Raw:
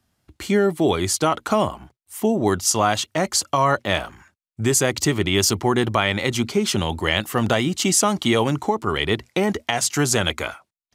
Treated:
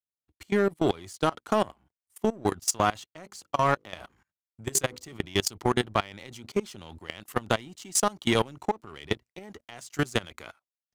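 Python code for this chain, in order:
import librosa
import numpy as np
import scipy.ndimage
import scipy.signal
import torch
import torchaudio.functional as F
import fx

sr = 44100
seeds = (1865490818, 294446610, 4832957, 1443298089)

y = fx.hum_notches(x, sr, base_hz=50, count=10, at=(3.23, 5.13))
y = fx.power_curve(y, sr, exponent=1.4)
y = fx.level_steps(y, sr, step_db=22)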